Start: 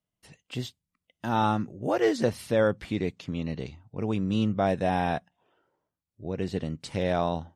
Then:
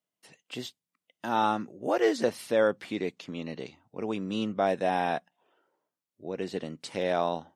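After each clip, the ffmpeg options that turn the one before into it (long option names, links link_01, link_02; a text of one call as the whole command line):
ffmpeg -i in.wav -af "highpass=270" out.wav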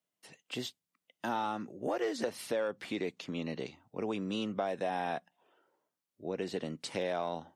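ffmpeg -i in.wav -filter_complex "[0:a]acrossover=split=330[link_01][link_02];[link_01]alimiter=level_in=7.5dB:limit=-24dB:level=0:latency=1,volume=-7.5dB[link_03];[link_03][link_02]amix=inputs=2:normalize=0,asoftclip=type=tanh:threshold=-14.5dB,acompressor=threshold=-30dB:ratio=6" out.wav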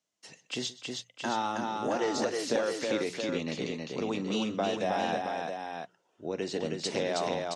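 ffmpeg -i in.wav -af "lowpass=frequency=6500:width_type=q:width=2.4,bandreject=frequency=60:width_type=h:width=6,bandreject=frequency=120:width_type=h:width=6,bandreject=frequency=180:width_type=h:width=6,aecho=1:1:45|127|318|670:0.141|0.112|0.668|0.473,volume=2.5dB" out.wav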